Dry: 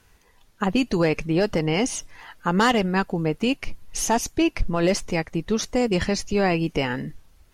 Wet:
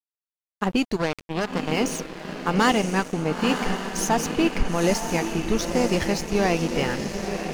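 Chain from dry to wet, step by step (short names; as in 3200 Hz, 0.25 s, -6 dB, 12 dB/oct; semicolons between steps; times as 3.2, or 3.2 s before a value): 0.96–1.72 power-law curve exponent 2; diffused feedback echo 0.944 s, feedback 56%, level -5 dB; crossover distortion -34.5 dBFS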